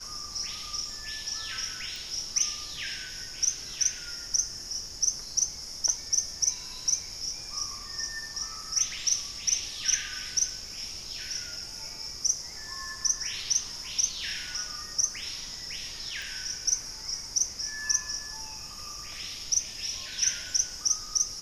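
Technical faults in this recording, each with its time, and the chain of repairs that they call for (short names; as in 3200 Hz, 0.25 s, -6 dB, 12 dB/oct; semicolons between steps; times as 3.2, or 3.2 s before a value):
1.96 pop
16.22 pop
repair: de-click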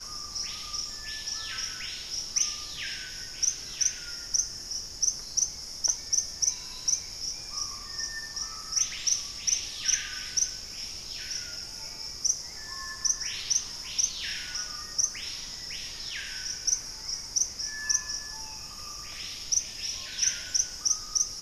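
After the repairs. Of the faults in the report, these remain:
none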